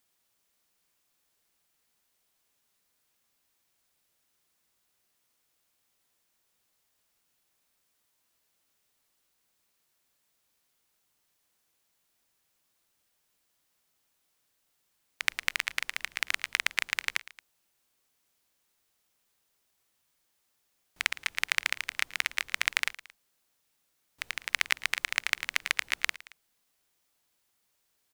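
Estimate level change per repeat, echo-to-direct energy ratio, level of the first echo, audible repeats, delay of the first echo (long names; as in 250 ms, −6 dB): −4.5 dB, −17.5 dB, −19.0 dB, 2, 112 ms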